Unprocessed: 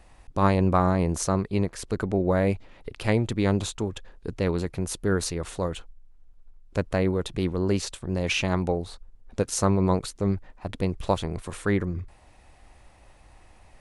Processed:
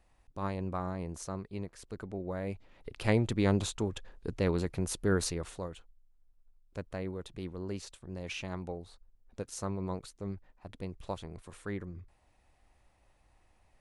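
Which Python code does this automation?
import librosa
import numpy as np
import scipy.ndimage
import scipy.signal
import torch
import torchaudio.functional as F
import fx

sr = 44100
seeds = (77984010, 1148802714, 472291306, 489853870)

y = fx.gain(x, sr, db=fx.line((2.41, -14.5), (3.07, -4.0), (5.29, -4.0), (5.76, -14.0)))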